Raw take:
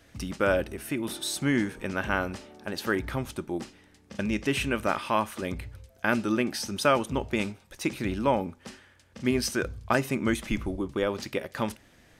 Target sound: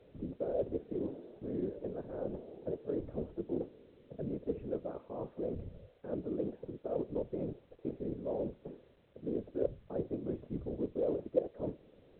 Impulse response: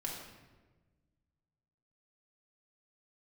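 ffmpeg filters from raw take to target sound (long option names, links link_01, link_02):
-af "areverse,acompressor=threshold=-32dB:ratio=10,areverse,lowpass=frequency=470:width_type=q:width=4.9,afftfilt=real='hypot(re,im)*cos(2*PI*random(0))':imag='hypot(re,im)*sin(2*PI*random(1))':win_size=512:overlap=0.75" -ar 8000 -c:a pcm_alaw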